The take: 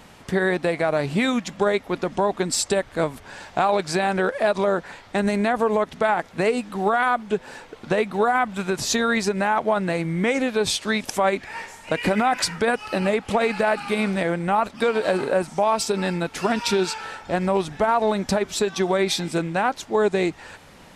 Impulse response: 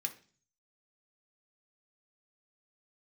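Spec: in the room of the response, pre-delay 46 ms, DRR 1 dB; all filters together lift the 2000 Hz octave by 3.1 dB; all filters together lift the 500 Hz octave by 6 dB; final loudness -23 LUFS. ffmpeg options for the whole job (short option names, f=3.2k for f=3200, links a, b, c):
-filter_complex "[0:a]equalizer=f=500:t=o:g=7.5,equalizer=f=2k:t=o:g=3.5,asplit=2[a][b];[1:a]atrim=start_sample=2205,adelay=46[c];[b][c]afir=irnorm=-1:irlink=0,volume=-1dB[d];[a][d]amix=inputs=2:normalize=0,volume=-5.5dB"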